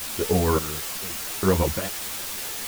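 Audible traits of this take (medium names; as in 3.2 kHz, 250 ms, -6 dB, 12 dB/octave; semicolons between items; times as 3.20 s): random-step tremolo, depth 100%; a quantiser's noise floor 6-bit, dither triangular; a shimmering, thickened sound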